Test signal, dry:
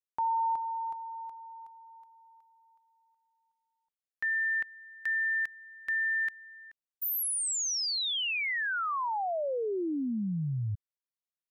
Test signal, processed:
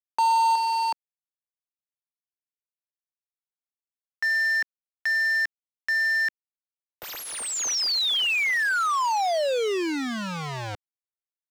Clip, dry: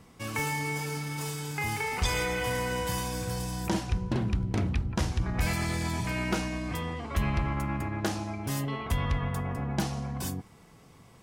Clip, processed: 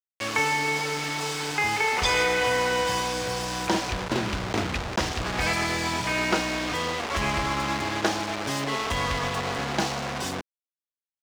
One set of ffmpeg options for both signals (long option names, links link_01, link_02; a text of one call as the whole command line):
ffmpeg -i in.wav -filter_complex "[0:a]acrusher=bits=5:mix=0:aa=0.000001,acrossover=split=300 7100:gain=0.224 1 0.112[link_01][link_02][link_03];[link_01][link_02][link_03]amix=inputs=3:normalize=0,volume=8dB" out.wav